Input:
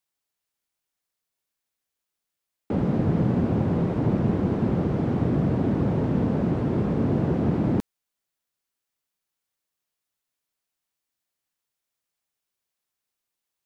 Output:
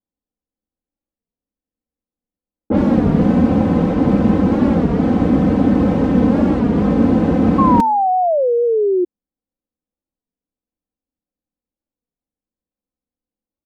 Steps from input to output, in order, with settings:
low-pass that shuts in the quiet parts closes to 360 Hz, open at −19.5 dBFS
comb filter 3.9 ms, depth 78%
hum removal 247.5 Hz, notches 24
sound drawn into the spectrogram fall, 0:07.58–0:09.05, 350–1,100 Hz −23 dBFS
wow of a warped record 33 1/3 rpm, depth 160 cents
level +8 dB

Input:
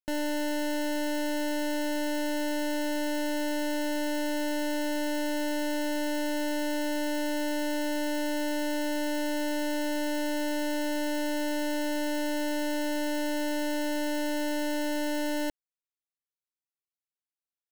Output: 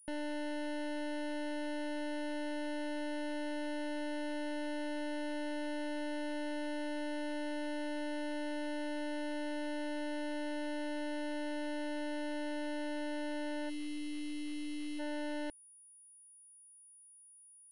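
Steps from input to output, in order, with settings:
wave folding −33 dBFS
gain on a spectral selection 0:13.69–0:15.00, 460–1,800 Hz −26 dB
switching amplifier with a slow clock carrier 9,700 Hz
level +2.5 dB

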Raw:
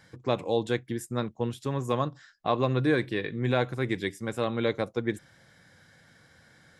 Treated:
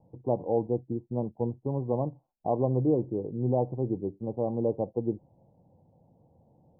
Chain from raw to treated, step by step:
Butterworth low-pass 910 Hz 72 dB per octave

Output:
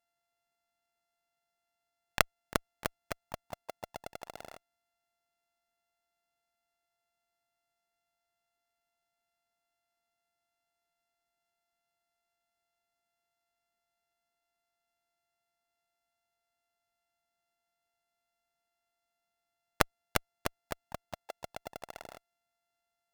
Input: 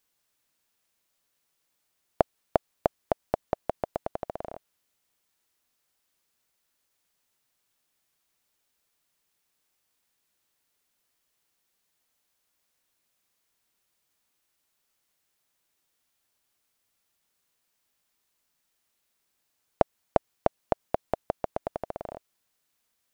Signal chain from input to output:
samples sorted by size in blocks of 64 samples
harmonic generator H 2 −18 dB, 3 −7 dB, 4 −35 dB, 7 −35 dB, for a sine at −2.5 dBFS
pitch-shifted copies added +4 semitones −14 dB, +5 semitones −17 dB
level −2.5 dB

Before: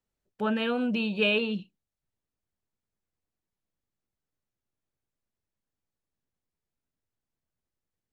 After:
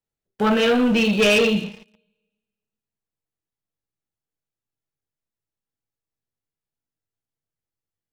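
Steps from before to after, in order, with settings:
coupled-rooms reverb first 0.45 s, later 1.5 s, from −20 dB, DRR 2 dB
leveller curve on the samples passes 3

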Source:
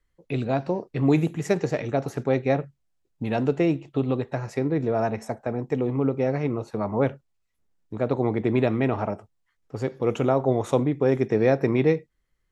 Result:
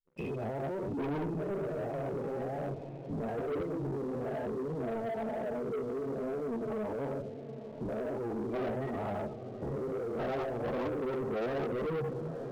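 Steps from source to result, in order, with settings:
every bin's largest magnitude spread in time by 240 ms
0:04.33–0:06.90: comb filter 4.6 ms, depth 39%
output level in coarse steps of 16 dB
convolution reverb RT60 1.2 s, pre-delay 5 ms, DRR 13.5 dB
soft clipping −26 dBFS, distortion −3 dB
flanger 1.1 Hz, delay 9.3 ms, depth 9.7 ms, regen +19%
gate on every frequency bin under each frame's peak −15 dB strong
feedback delay with all-pass diffusion 943 ms, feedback 61%, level −15 dB
leveller curve on the samples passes 3
level −6.5 dB

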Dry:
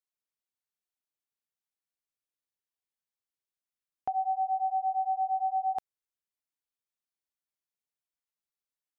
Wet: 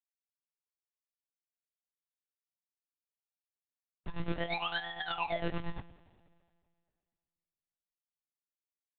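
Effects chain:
spectral dynamics exaggerated over time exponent 2
sample-and-hold swept by an LFO 33×, swing 100% 0.56 Hz
coupled-rooms reverb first 0.33 s, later 2.2 s, from −21 dB, DRR 6.5 dB
one-pitch LPC vocoder at 8 kHz 170 Hz
level −3.5 dB

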